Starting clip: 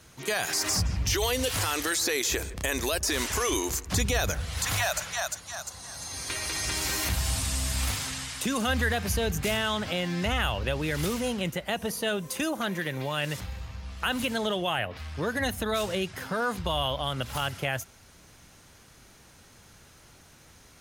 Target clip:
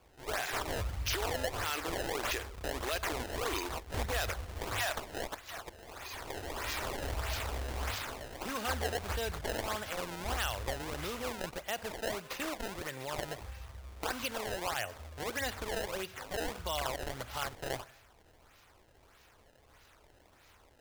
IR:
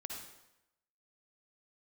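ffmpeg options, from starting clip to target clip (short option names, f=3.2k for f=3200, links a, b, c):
-filter_complex "[0:a]asplit=2[a][b];[1:a]atrim=start_sample=2205[c];[b][c]afir=irnorm=-1:irlink=0,volume=-12.5dB[d];[a][d]amix=inputs=2:normalize=0,acrusher=samples=22:mix=1:aa=0.000001:lfo=1:lforange=35.2:lforate=1.6,equalizer=f=180:t=o:w=1.6:g=-11.5,volume=-6.5dB"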